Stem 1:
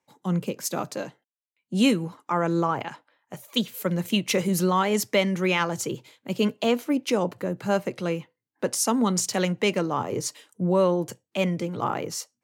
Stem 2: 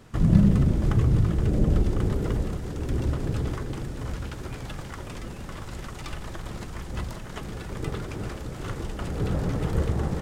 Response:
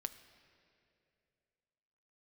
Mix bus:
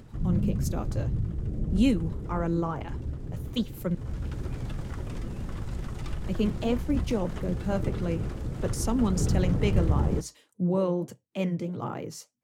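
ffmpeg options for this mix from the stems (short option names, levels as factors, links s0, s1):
-filter_complex "[0:a]volume=0.501,asplit=3[s0][s1][s2];[s0]atrim=end=3.95,asetpts=PTS-STARTPTS,afade=t=out:st=3.946:d=0.004:c=hsin[s3];[s1]atrim=start=3.95:end=6.1,asetpts=PTS-STARTPTS,volume=0[s4];[s2]atrim=start=6.1,asetpts=PTS-STARTPTS,afade=t=in:d=0.004:c=hsin[s5];[s3][s4][s5]concat=n=3:v=0:a=1[s6];[1:a]acompressor=mode=upward:threshold=0.0355:ratio=2.5,volume=0.631,afade=t=in:st=3.89:d=0.44:silence=0.316228[s7];[s6][s7]amix=inputs=2:normalize=0,lowshelf=f=390:g=11,flanger=delay=0.4:depth=9.1:regen=-74:speed=1.6:shape=sinusoidal"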